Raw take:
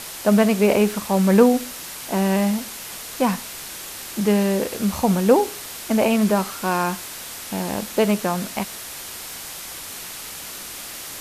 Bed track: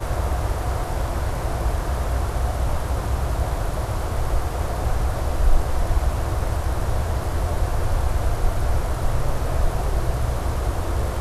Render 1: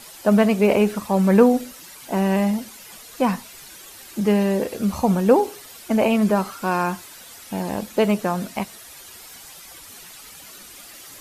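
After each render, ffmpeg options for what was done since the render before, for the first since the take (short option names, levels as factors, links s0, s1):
-af "afftdn=nr=11:nf=-35"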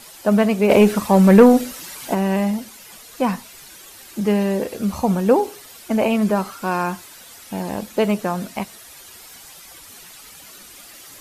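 -filter_complex "[0:a]asplit=3[s0][s1][s2];[s0]afade=t=out:st=0.69:d=0.02[s3];[s1]acontrast=70,afade=t=in:st=0.69:d=0.02,afade=t=out:st=2.13:d=0.02[s4];[s2]afade=t=in:st=2.13:d=0.02[s5];[s3][s4][s5]amix=inputs=3:normalize=0"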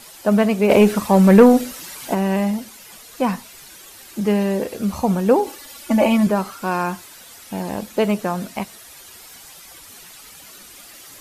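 -filter_complex "[0:a]asettb=1/sr,asplit=3[s0][s1][s2];[s0]atrim=end=5.464[s3];[s1]atrim=start=5.46:end=6.27,asetpts=PTS-STARTPTS,afade=t=in:d=0.004:c=qsin,afade=t=out:st=0.806:d=0.004:c=qsin,aecho=1:1:3.5:0.93,atrim=end_sample=35721[s4];[s2]atrim=start=6.266[s5];[s3][s4]acrossfade=d=0.004:c1=hsin:c2=qsin[s6];[s6][s5]acrossfade=d=0.004:c1=qsin:c2=hsin"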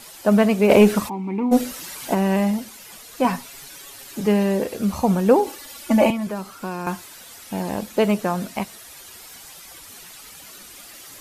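-filter_complex "[0:a]asplit=3[s0][s1][s2];[s0]afade=t=out:st=1.08:d=0.02[s3];[s1]asplit=3[s4][s5][s6];[s4]bandpass=f=300:t=q:w=8,volume=1[s7];[s5]bandpass=f=870:t=q:w=8,volume=0.501[s8];[s6]bandpass=f=2240:t=q:w=8,volume=0.355[s9];[s7][s8][s9]amix=inputs=3:normalize=0,afade=t=in:st=1.08:d=0.02,afade=t=out:st=1.51:d=0.02[s10];[s2]afade=t=in:st=1.51:d=0.02[s11];[s3][s10][s11]amix=inputs=3:normalize=0,asettb=1/sr,asplit=3[s12][s13][s14];[s12]atrim=end=3.244[s15];[s13]atrim=start=3.24:end=4.27,asetpts=PTS-STARTPTS,afade=t=in:d=0.004:c=qsin,afade=t=out:st=1.026:d=0.004:c=qsin,aecho=1:1:7.2:0.65,atrim=end_sample=45423[s16];[s14]atrim=start=4.266[s17];[s15][s16]acrossfade=d=0.004:c1=hsin:c2=qsin[s18];[s18][s17]acrossfade=d=0.004:c1=qsin:c2=hsin,asettb=1/sr,asplit=3[s19][s20][s21];[s19]atrim=end=6.104[s22];[s20]atrim=start=6.1:end=6.87,asetpts=PTS-STARTPTS,afade=t=in:d=0.004:c=qsin,afade=t=out:st=0.766:d=0.004:c=qsin,acrossover=split=480|1100|2600[s23][s24][s25][s26];[s23]acompressor=threshold=0.0355:ratio=3[s27];[s24]acompressor=threshold=0.0126:ratio=3[s28];[s25]acompressor=threshold=0.00708:ratio=3[s29];[s26]acompressor=threshold=0.00562:ratio=3[s30];[s27][s28][s29][s30]amix=inputs=4:normalize=0[s31];[s21]atrim=start=6.866[s32];[s22][s31]acrossfade=d=0.004:c1=hsin:c2=qsin[s33];[s33][s32]acrossfade=d=0.004:c1=qsin:c2=hsin"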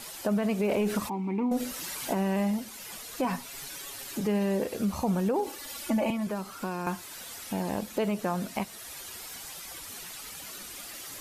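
-af "alimiter=limit=0.224:level=0:latency=1:release=54,acompressor=threshold=0.0158:ratio=1.5"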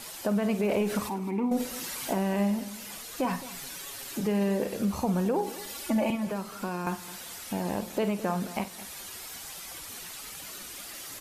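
-filter_complex "[0:a]asplit=2[s0][s1];[s1]adelay=50,volume=0.237[s2];[s0][s2]amix=inputs=2:normalize=0,aecho=1:1:215|430:0.158|0.038"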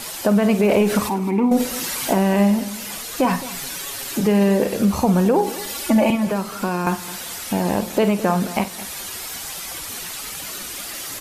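-af "volume=3.35"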